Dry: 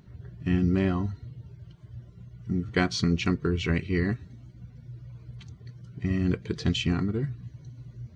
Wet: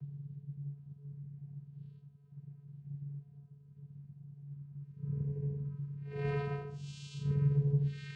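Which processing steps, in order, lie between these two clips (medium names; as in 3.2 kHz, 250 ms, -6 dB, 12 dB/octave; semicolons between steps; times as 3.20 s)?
Paulstretch 4.1×, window 0.10 s, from 1.25 s; vocoder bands 8, square 142 Hz; trim -7.5 dB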